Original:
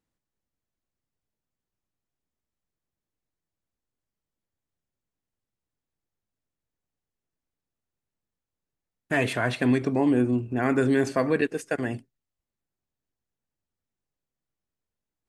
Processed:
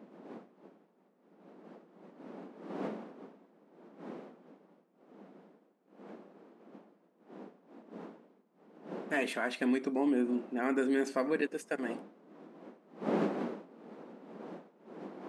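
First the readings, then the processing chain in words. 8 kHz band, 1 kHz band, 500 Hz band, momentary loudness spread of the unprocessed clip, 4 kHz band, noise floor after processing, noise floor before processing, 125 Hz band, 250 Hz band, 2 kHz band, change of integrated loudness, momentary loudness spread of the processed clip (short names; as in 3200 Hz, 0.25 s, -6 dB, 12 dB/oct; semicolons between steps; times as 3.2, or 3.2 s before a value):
-7.5 dB, -6.0 dB, -6.5 dB, 8 LU, -7.0 dB, -70 dBFS, under -85 dBFS, -18.0 dB, -7.0 dB, -7.5 dB, -9.5 dB, 21 LU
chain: wind noise 420 Hz -36 dBFS; brick-wall FIR high-pass 170 Hz; gain -7.5 dB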